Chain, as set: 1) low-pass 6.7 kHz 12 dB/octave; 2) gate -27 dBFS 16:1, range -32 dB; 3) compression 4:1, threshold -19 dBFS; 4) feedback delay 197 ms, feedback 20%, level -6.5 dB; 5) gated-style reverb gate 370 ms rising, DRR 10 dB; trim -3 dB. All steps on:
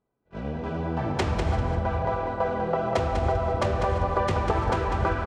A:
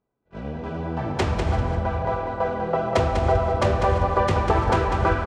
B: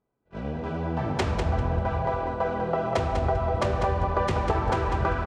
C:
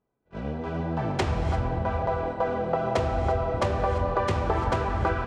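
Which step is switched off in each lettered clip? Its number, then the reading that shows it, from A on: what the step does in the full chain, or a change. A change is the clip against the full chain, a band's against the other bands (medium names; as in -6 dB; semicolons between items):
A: 3, mean gain reduction 2.5 dB; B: 5, echo-to-direct -4.5 dB to -6.5 dB; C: 4, echo-to-direct -4.5 dB to -10.0 dB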